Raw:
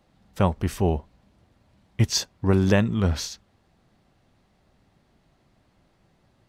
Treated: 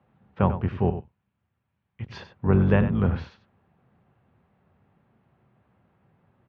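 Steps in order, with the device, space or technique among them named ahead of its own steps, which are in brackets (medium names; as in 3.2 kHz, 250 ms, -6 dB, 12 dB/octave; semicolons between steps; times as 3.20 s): 0.90–2.11 s: amplifier tone stack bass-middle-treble 5-5-5; echo from a far wall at 16 m, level -11 dB; sub-octave bass pedal (octave divider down 2 oct, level +2 dB; cabinet simulation 83–2400 Hz, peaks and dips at 300 Hz -7 dB, 630 Hz -4 dB, 2 kHz -5 dB)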